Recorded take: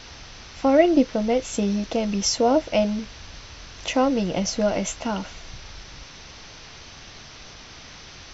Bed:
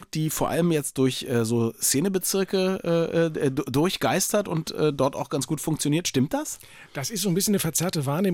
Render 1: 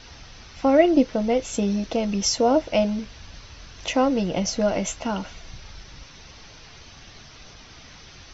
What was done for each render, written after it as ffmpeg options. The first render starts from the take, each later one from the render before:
-af "afftdn=nr=6:nf=-44"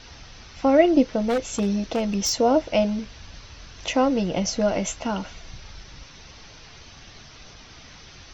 -filter_complex "[0:a]asettb=1/sr,asplit=3[a][b][c];[a]atrim=end=1.254[d];[b]atrim=start=1.25:end=2.38,asetpts=PTS-STARTPTS,afade=t=in:d=0.004:c=qsin,afade=t=out:st=1.126:d=0.004:c=qsin,aeval=exprs='0.141*(abs(mod(val(0)/0.141+3,4)-2)-1)':c=same[e];[c]atrim=start=2.376[f];[d][e]acrossfade=d=0.004:c1=hsin:c2=qsin[g];[g][f]acrossfade=d=0.004:c1=qsin:c2=hsin"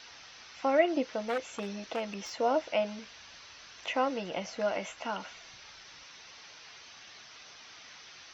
-filter_complex "[0:a]acrossover=split=2700[a][b];[b]acompressor=threshold=-50dB:ratio=4:attack=1:release=60[c];[a][c]amix=inputs=2:normalize=0,highpass=f=1.4k:p=1"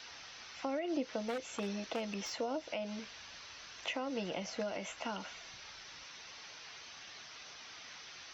-filter_complex "[0:a]alimiter=limit=-24dB:level=0:latency=1:release=157,acrossover=split=390|3000[a][b][c];[b]acompressor=threshold=-39dB:ratio=6[d];[a][d][c]amix=inputs=3:normalize=0"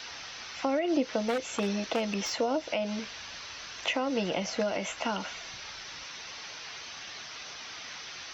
-af "volume=8.5dB"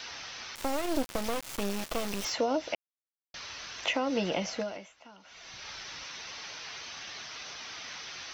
-filter_complex "[0:a]asettb=1/sr,asplit=3[a][b][c];[a]atrim=end=0.554[d];[b]atrim=start=0.55:end=2.25,asetpts=PTS-STARTPTS,afade=t=in:d=0.004:c=qsin,afade=t=out:st=1.696:d=0.004:c=qsin,acrusher=bits=3:dc=4:mix=0:aa=0.000001[e];[c]atrim=start=2.246[f];[d][e]acrossfade=d=0.004:c1=hsin:c2=qsin[g];[g][f]acrossfade=d=0.004:c1=qsin:c2=hsin,asplit=5[h][i][j][k][l];[h]atrim=end=2.75,asetpts=PTS-STARTPTS,afade=t=out:st=2.746:d=0.004:c=hsin[m];[i]atrim=start=2.75:end=3.34,asetpts=PTS-STARTPTS,volume=0[n];[j]atrim=start=3.34:end=4.89,asetpts=PTS-STARTPTS,afade=t=in:d=0.004:c=hsin,afade=t=out:st=1.06:d=0.49:silence=0.0841395[o];[k]atrim=start=4.89:end=5.23,asetpts=PTS-STARTPTS,volume=-21.5dB[p];[l]atrim=start=5.23,asetpts=PTS-STARTPTS,afade=t=in:d=0.49:silence=0.0841395[q];[m][n][o][p][q]concat=n=5:v=0:a=1"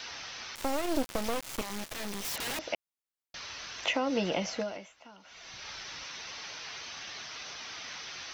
-filter_complex "[0:a]asettb=1/sr,asplit=3[a][b][c];[a]atrim=end=1.614[d];[b]atrim=start=1.61:end=2.59,asetpts=PTS-STARTPTS,afade=t=in:d=0.004:c=qsin,afade=t=out:st=0.976:d=0.004:c=qsin,aeval=exprs='(mod(31.6*val(0)+1,2)-1)/31.6':c=same[e];[c]atrim=start=2.586[f];[d][e]acrossfade=d=0.004:c1=hsin:c2=qsin[g];[g][f]acrossfade=d=0.004:c1=qsin:c2=hsin"

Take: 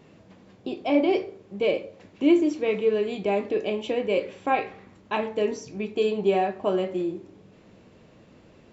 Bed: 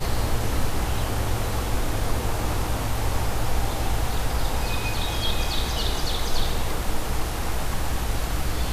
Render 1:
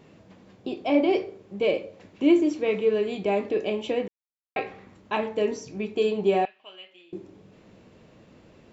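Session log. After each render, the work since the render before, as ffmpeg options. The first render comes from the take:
-filter_complex "[0:a]asettb=1/sr,asplit=3[a][b][c];[a]atrim=end=6.454[d];[b]atrim=start=6.45:end=7.13,asetpts=PTS-STARTPTS,afade=t=in:d=0.004:c=qsin,afade=t=out:st=0.676:d=0.004:c=qsin,bandpass=f=2.9k:t=q:w=3.8[e];[c]atrim=start=7.126[f];[d][e]acrossfade=d=0.004:c1=hsin:c2=qsin[g];[g][f]acrossfade=d=0.004:c1=qsin:c2=hsin,asplit=3[h][i][j];[h]atrim=end=4.08,asetpts=PTS-STARTPTS,afade=t=out:st=4.076:d=0.004:c=hsin[k];[i]atrim=start=4.08:end=4.56,asetpts=PTS-STARTPTS,volume=0[l];[j]atrim=start=4.56,asetpts=PTS-STARTPTS,afade=t=in:d=0.004:c=hsin[m];[k][l][m]concat=n=3:v=0:a=1"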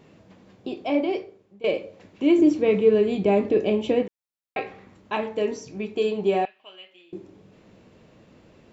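-filter_complex "[0:a]asettb=1/sr,asplit=3[a][b][c];[a]atrim=end=2.384[d];[b]atrim=start=2.38:end=4.03,asetpts=PTS-STARTPTS,afade=t=in:d=0.004:c=qsin,afade=t=out:st=1.646:d=0.004:c=qsin,lowshelf=f=410:g=10.5[e];[c]atrim=start=4.026[f];[d][e]acrossfade=d=0.004:c1=hsin:c2=qsin[g];[g][f]acrossfade=d=0.004:c1=qsin:c2=hsin,asplit=2[h][i];[h]atrim=end=1.64,asetpts=PTS-STARTPTS,afade=t=out:st=0.79:d=0.85:silence=0.112202[j];[i]atrim=start=1.64,asetpts=PTS-STARTPTS,afade=t=in:d=0.004:c=hsin:silence=0.112202[k];[j][k]concat=n=2:v=0:a=1"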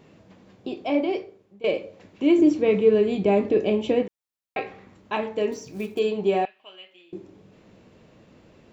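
-filter_complex "[0:a]asettb=1/sr,asplit=3[a][b][c];[a]atrim=end=5.524[d];[b]atrim=start=5.52:end=5.99,asetpts=PTS-STARTPTS,afade=t=in:d=0.004:c=qsin,afade=t=out:st=0.466:d=0.004:c=qsin,acrusher=bits=6:mode=log:mix=0:aa=0.000001[e];[c]atrim=start=5.986[f];[d][e]acrossfade=d=0.004:c1=hsin:c2=qsin[g];[g][f]acrossfade=d=0.004:c1=qsin:c2=hsin"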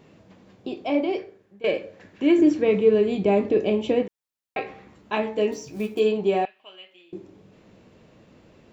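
-filter_complex "[0:a]asettb=1/sr,asplit=3[a][b][c];[a]atrim=end=1.184[d];[b]atrim=start=1.18:end=2.64,asetpts=PTS-STARTPTS,afade=t=in:d=0.004:c=qsin,afade=t=out:st=1.456:d=0.004:c=qsin,equalizer=f=1.7k:w=3.7:g=11[e];[c]atrim=start=2.636[f];[d][e]acrossfade=d=0.004:c1=hsin:c2=qsin[g];[g][f]acrossfade=d=0.004:c1=qsin:c2=hsin,asettb=1/sr,asplit=3[h][i][j];[h]atrim=end=4.674[k];[i]atrim=start=4.67:end=6.18,asetpts=PTS-STARTPTS,afade=t=in:d=0.004:c=qsin,afade=t=out:st=1.506:d=0.004:c=qsin,asplit=2[l][m];[m]adelay=14,volume=-5dB[n];[l][n]amix=inputs=2:normalize=0,atrim=end_sample=66591[o];[j]atrim=start=6.176[p];[k][o]acrossfade=d=0.004:c1=hsin:c2=qsin[q];[q][p]acrossfade=d=0.004:c1=qsin:c2=hsin"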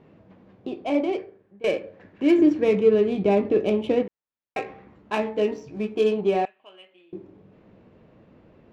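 -af "adynamicsmooth=sensitivity=3.5:basefreq=2.4k"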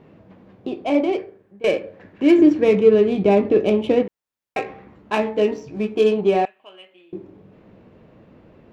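-af "volume=4.5dB"

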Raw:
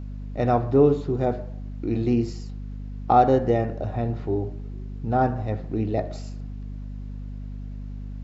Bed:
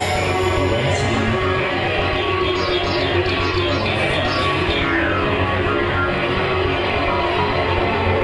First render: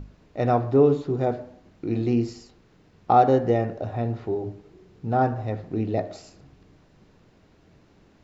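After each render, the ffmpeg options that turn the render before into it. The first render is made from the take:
-af "bandreject=f=50:t=h:w=6,bandreject=f=100:t=h:w=6,bandreject=f=150:t=h:w=6,bandreject=f=200:t=h:w=6,bandreject=f=250:t=h:w=6,bandreject=f=300:t=h:w=6"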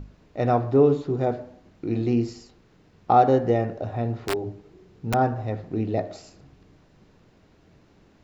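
-filter_complex "[0:a]asettb=1/sr,asplit=3[a][b][c];[a]atrim=end=4.154[d];[b]atrim=start=4.15:end=5.14,asetpts=PTS-STARTPTS,afade=t=in:d=0.004:c=qsin,afade=t=out:st=0.986:d=0.004:c=qsin,aeval=exprs='(mod(8.91*val(0)+1,2)-1)/8.91':c=same[e];[c]atrim=start=5.136[f];[d][e]acrossfade=d=0.004:c1=hsin:c2=qsin[g];[g][f]acrossfade=d=0.004:c1=qsin:c2=hsin"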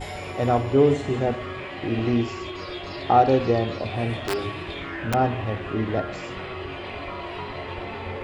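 -filter_complex "[1:a]volume=-15dB[a];[0:a][a]amix=inputs=2:normalize=0"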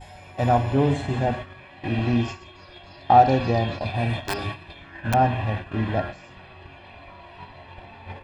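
-af "agate=range=-12dB:threshold=-30dB:ratio=16:detection=peak,aecho=1:1:1.2:0.58"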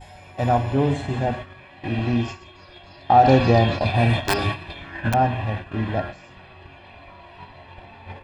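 -filter_complex "[0:a]asplit=3[a][b][c];[a]afade=t=out:st=3.23:d=0.02[d];[b]acontrast=66,afade=t=in:st=3.23:d=0.02,afade=t=out:st=5.08:d=0.02[e];[c]afade=t=in:st=5.08:d=0.02[f];[d][e][f]amix=inputs=3:normalize=0"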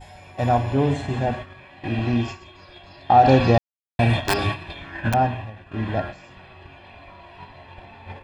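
-filter_complex "[0:a]asplit=5[a][b][c][d][e];[a]atrim=end=3.58,asetpts=PTS-STARTPTS,afade=t=out:st=3.576:d=0.004:c=hsin[f];[b]atrim=start=3.58:end=3.99,asetpts=PTS-STARTPTS,volume=0[g];[c]atrim=start=3.99:end=5.52,asetpts=PTS-STARTPTS,afade=t=in:d=0.004:c=hsin,afade=t=out:st=1.11:d=0.42:c=qsin:silence=0.188365[h];[d]atrim=start=5.52:end=5.56,asetpts=PTS-STARTPTS,volume=-14.5dB[i];[e]atrim=start=5.56,asetpts=PTS-STARTPTS,afade=t=in:d=0.42:c=qsin:silence=0.188365[j];[f][g][h][i][j]concat=n=5:v=0:a=1"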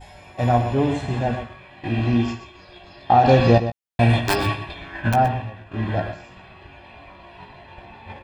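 -filter_complex "[0:a]asplit=2[a][b];[b]adelay=17,volume=-8dB[c];[a][c]amix=inputs=2:normalize=0,asplit=2[d][e];[e]adelay=122.4,volume=-11dB,highshelf=f=4k:g=-2.76[f];[d][f]amix=inputs=2:normalize=0"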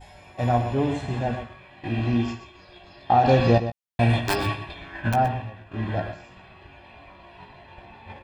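-af "volume=-3.5dB"

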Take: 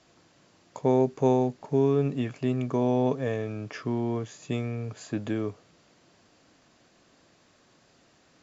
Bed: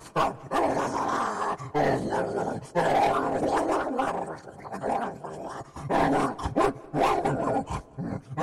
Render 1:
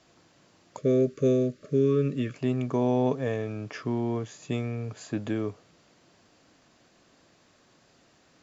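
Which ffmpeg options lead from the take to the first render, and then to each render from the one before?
-filter_complex "[0:a]asettb=1/sr,asplit=3[a][b][c];[a]atrim=end=0.774[d];[b]atrim=start=0.77:end=2.35,asetpts=PTS-STARTPTS,afade=t=in:d=0.004:c=qsin,afade=t=out:st=1.576:d=0.004:c=qsin,asuperstop=centerf=840:order=20:qfactor=1.8[e];[c]atrim=start=2.346[f];[d][e]acrossfade=d=0.004:c1=hsin:c2=qsin[g];[g][f]acrossfade=d=0.004:c1=qsin:c2=hsin"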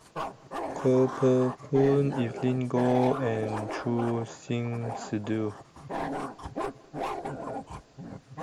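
-filter_complex "[1:a]volume=-9.5dB[a];[0:a][a]amix=inputs=2:normalize=0"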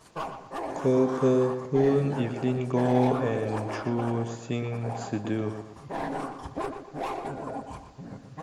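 -filter_complex "[0:a]asplit=2[a][b];[b]adelay=120,lowpass=f=4k:p=1,volume=-8dB,asplit=2[c][d];[d]adelay=120,lowpass=f=4k:p=1,volume=0.38,asplit=2[e][f];[f]adelay=120,lowpass=f=4k:p=1,volume=0.38,asplit=2[g][h];[h]adelay=120,lowpass=f=4k:p=1,volume=0.38[i];[a][c][e][g][i]amix=inputs=5:normalize=0"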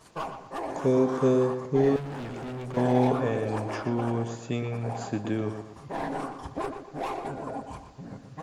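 -filter_complex "[0:a]asettb=1/sr,asplit=3[a][b][c];[a]atrim=end=1.964[d];[b]atrim=start=1.96:end=2.77,asetpts=PTS-STARTPTS,afade=t=in:d=0.004:c=qsin,afade=t=out:st=0.806:d=0.004:c=qsin,volume=34dB,asoftclip=hard,volume=-34dB[e];[c]atrim=start=2.766[f];[d][e]acrossfade=d=0.004:c1=hsin:c2=qsin[g];[g][f]acrossfade=d=0.004:c1=qsin:c2=hsin"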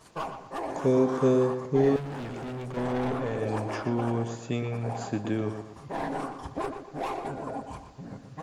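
-filter_complex "[0:a]asettb=1/sr,asplit=3[a][b][c];[a]atrim=end=2.684[d];[b]atrim=start=2.68:end=3.41,asetpts=PTS-STARTPTS,afade=t=in:d=0.004:c=qsin,afade=t=out:st=0.726:d=0.004:c=qsin,aeval=exprs='(tanh(17.8*val(0)+0.3)-tanh(0.3))/17.8':c=same[e];[c]atrim=start=3.406[f];[d][e]acrossfade=d=0.004:c1=hsin:c2=qsin[g];[g][f]acrossfade=d=0.004:c1=qsin:c2=hsin"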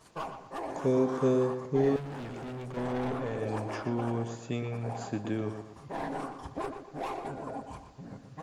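-af "volume=-3.5dB"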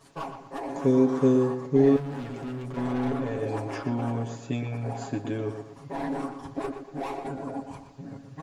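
-af "equalizer=f=270:t=o:w=0.79:g=4.5,aecho=1:1:7.2:0.69"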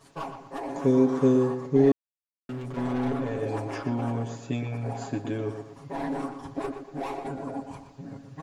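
-filter_complex "[0:a]asplit=3[a][b][c];[a]atrim=end=1.92,asetpts=PTS-STARTPTS,afade=t=out:st=1.916:d=0.004:c=hsin[d];[b]atrim=start=1.92:end=2.49,asetpts=PTS-STARTPTS,volume=0[e];[c]atrim=start=2.49,asetpts=PTS-STARTPTS,afade=t=in:d=0.004:c=hsin[f];[d][e][f]concat=n=3:v=0:a=1"

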